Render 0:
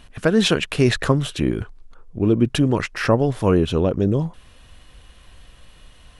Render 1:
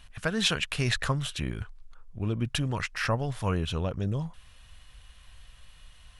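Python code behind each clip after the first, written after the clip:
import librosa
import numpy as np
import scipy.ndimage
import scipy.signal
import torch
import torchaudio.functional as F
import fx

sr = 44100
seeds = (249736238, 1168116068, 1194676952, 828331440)

y = fx.peak_eq(x, sr, hz=340.0, db=-14.0, octaves=1.8)
y = y * 10.0 ** (-4.0 / 20.0)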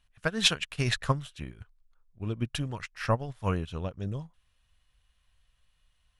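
y = fx.upward_expand(x, sr, threshold_db=-37.0, expansion=2.5)
y = y * 10.0 ** (4.5 / 20.0)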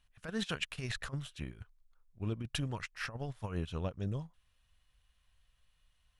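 y = fx.over_compress(x, sr, threshold_db=-30.0, ratio=-0.5)
y = y * 10.0 ** (-5.0 / 20.0)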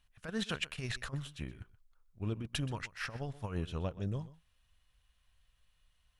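y = x + 10.0 ** (-17.5 / 20.0) * np.pad(x, (int(126 * sr / 1000.0), 0))[:len(x)]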